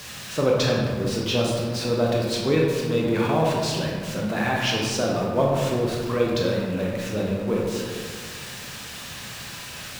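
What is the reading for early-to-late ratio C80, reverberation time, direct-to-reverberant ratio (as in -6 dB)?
2.5 dB, 1.8 s, -3.0 dB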